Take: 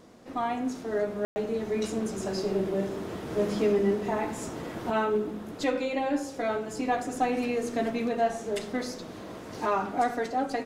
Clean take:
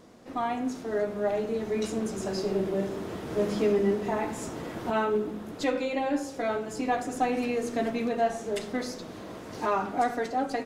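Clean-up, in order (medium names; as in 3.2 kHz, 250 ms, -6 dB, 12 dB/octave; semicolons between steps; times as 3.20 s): room tone fill 1.25–1.36 s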